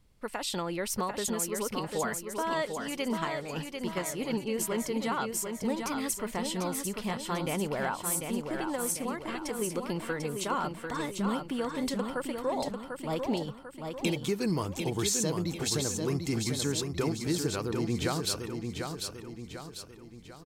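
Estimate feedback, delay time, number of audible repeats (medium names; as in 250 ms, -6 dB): 47%, 745 ms, 5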